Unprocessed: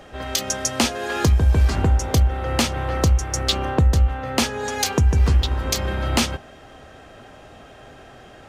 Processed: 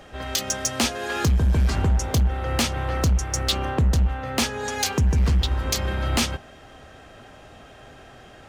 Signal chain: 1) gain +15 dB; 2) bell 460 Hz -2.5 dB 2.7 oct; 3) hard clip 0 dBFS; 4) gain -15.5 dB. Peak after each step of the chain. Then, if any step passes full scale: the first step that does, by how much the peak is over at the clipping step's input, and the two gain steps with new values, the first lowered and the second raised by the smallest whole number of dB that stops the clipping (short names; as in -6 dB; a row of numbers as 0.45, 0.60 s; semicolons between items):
+7.5, +8.0, 0.0, -15.5 dBFS; step 1, 8.0 dB; step 1 +7 dB, step 4 -7.5 dB